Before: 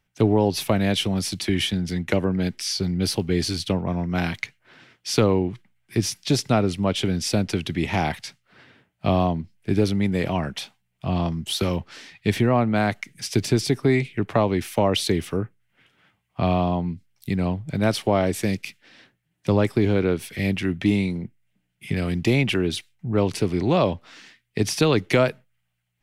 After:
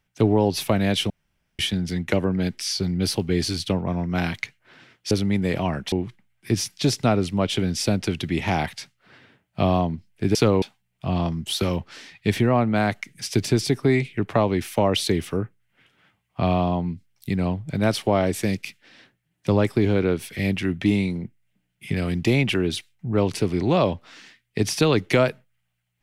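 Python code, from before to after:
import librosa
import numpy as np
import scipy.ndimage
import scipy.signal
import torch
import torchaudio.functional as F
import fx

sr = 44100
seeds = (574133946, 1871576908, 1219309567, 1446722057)

y = fx.edit(x, sr, fx.room_tone_fill(start_s=1.1, length_s=0.49),
    fx.swap(start_s=5.11, length_s=0.27, other_s=9.81, other_length_s=0.81), tone=tone)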